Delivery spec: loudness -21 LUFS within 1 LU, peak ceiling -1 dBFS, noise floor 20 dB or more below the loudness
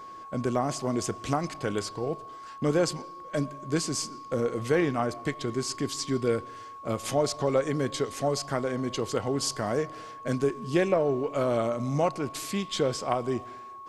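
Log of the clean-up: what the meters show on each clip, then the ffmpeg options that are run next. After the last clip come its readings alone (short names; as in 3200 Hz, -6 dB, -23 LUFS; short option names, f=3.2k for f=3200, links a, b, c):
steady tone 1100 Hz; tone level -41 dBFS; loudness -29.0 LUFS; peak -11.0 dBFS; loudness target -21.0 LUFS
-> -af "bandreject=f=1.1k:w=30"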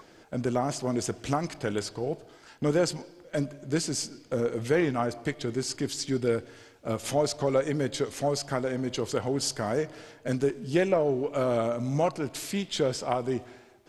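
steady tone none; loudness -29.5 LUFS; peak -12.0 dBFS; loudness target -21.0 LUFS
-> -af "volume=8.5dB"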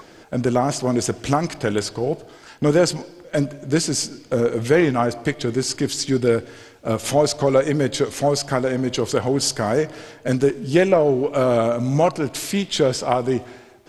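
loudness -21.0 LUFS; peak -3.5 dBFS; noise floor -47 dBFS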